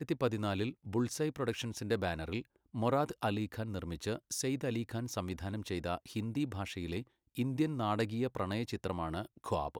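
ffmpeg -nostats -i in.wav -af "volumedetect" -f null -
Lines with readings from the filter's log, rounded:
mean_volume: -36.1 dB
max_volume: -18.8 dB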